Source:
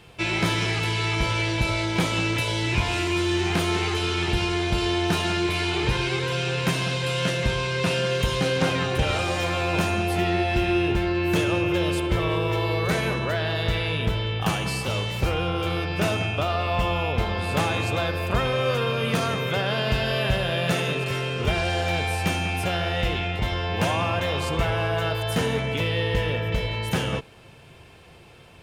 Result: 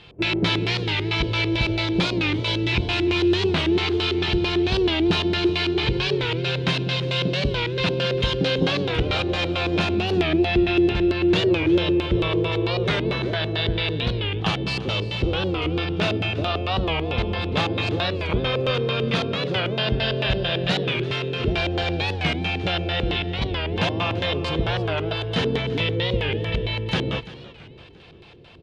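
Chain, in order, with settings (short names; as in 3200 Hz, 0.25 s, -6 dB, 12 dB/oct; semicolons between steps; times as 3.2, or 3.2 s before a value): LFO low-pass square 4.5 Hz 370–3900 Hz; feedback echo 0.339 s, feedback 44%, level -17 dB; record warp 45 rpm, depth 160 cents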